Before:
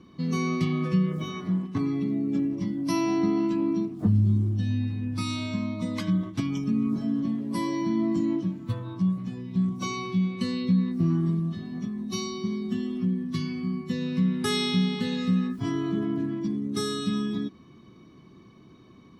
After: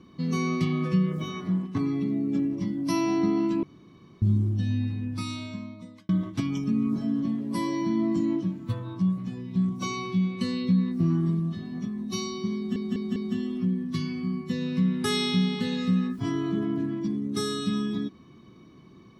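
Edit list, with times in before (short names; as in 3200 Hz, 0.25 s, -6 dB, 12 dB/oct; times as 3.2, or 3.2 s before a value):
3.63–4.22 room tone
4.91–6.09 fade out
12.56 stutter 0.20 s, 4 plays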